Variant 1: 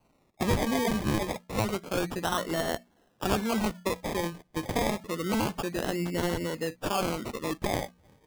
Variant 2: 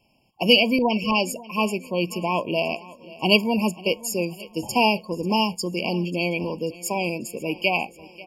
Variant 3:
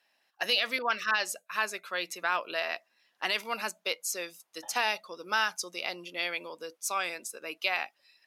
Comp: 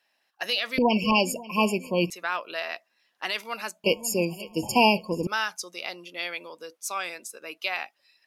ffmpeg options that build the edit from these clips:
-filter_complex "[1:a]asplit=2[a][b];[2:a]asplit=3[c][d][e];[c]atrim=end=0.782[f];[a]atrim=start=0.778:end=2.102[g];[d]atrim=start=2.098:end=3.842[h];[b]atrim=start=3.838:end=5.272[i];[e]atrim=start=5.268[j];[f][g]acrossfade=d=0.004:c1=hsin:c2=hsin[k];[k][h]acrossfade=d=0.004:c1=hsin:c2=hsin[l];[l][i]acrossfade=d=0.004:c1=hsin:c2=hsin[m];[m][j]acrossfade=d=0.004:c1=hsin:c2=hsin"

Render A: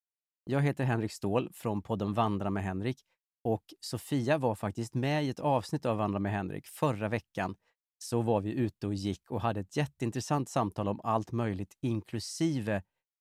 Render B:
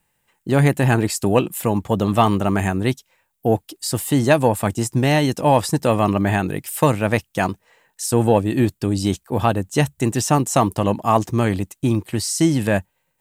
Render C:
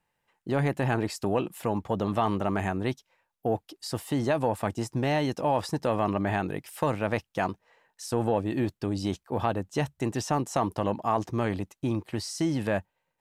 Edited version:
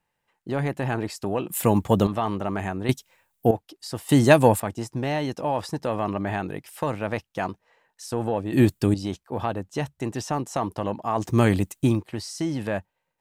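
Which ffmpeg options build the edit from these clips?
-filter_complex "[1:a]asplit=5[a][b][c][d][e];[2:a]asplit=6[f][g][h][i][j][k];[f]atrim=end=1.492[l];[a]atrim=start=1.488:end=2.072[m];[g]atrim=start=2.068:end=2.892[n];[b]atrim=start=2.888:end=3.512[o];[h]atrim=start=3.508:end=4.092[p];[c]atrim=start=4.088:end=4.602[q];[i]atrim=start=4.598:end=8.532[r];[d]atrim=start=8.528:end=8.942[s];[j]atrim=start=8.938:end=11.38[t];[e]atrim=start=11.14:end=12.06[u];[k]atrim=start=11.82[v];[l][m]acrossfade=d=0.004:c1=hsin:c2=hsin[w];[w][n]acrossfade=d=0.004:c1=hsin:c2=hsin[x];[x][o]acrossfade=d=0.004:c1=hsin:c2=hsin[y];[y][p]acrossfade=d=0.004:c1=hsin:c2=hsin[z];[z][q]acrossfade=d=0.004:c1=hsin:c2=hsin[aa];[aa][r]acrossfade=d=0.004:c1=hsin:c2=hsin[ab];[ab][s]acrossfade=d=0.004:c1=hsin:c2=hsin[ac];[ac][t]acrossfade=d=0.004:c1=hsin:c2=hsin[ad];[ad][u]acrossfade=d=0.24:c1=tri:c2=tri[ae];[ae][v]acrossfade=d=0.24:c1=tri:c2=tri"

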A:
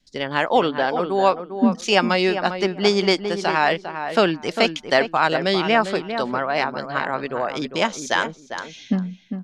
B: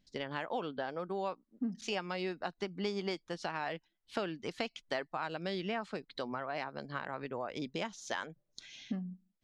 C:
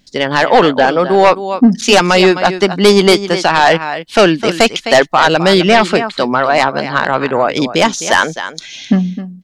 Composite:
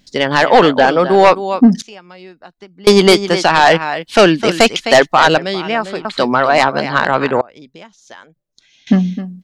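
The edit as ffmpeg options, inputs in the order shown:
-filter_complex "[1:a]asplit=2[a][b];[2:a]asplit=4[c][d][e][f];[c]atrim=end=1.822[g];[a]atrim=start=1.818:end=2.872[h];[d]atrim=start=2.868:end=5.382[i];[0:a]atrim=start=5.378:end=6.052[j];[e]atrim=start=6.048:end=7.412[k];[b]atrim=start=7.408:end=8.872[l];[f]atrim=start=8.868[m];[g][h]acrossfade=d=0.004:c1=hsin:c2=hsin[n];[n][i]acrossfade=d=0.004:c1=hsin:c2=hsin[o];[o][j]acrossfade=d=0.004:c1=hsin:c2=hsin[p];[p][k]acrossfade=d=0.004:c1=hsin:c2=hsin[q];[q][l]acrossfade=d=0.004:c1=hsin:c2=hsin[r];[r][m]acrossfade=d=0.004:c1=hsin:c2=hsin"

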